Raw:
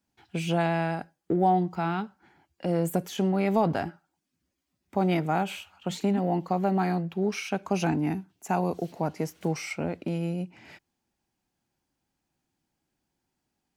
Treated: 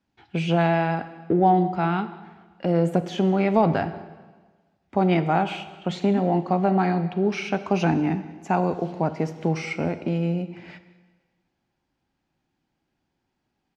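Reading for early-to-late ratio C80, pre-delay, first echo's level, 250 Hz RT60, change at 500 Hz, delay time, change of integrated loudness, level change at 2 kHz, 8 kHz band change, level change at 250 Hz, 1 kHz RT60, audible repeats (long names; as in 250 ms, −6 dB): 14.0 dB, 5 ms, −23.0 dB, 1.4 s, +5.0 dB, 189 ms, +4.5 dB, +4.5 dB, can't be measured, +4.5 dB, 1.4 s, 1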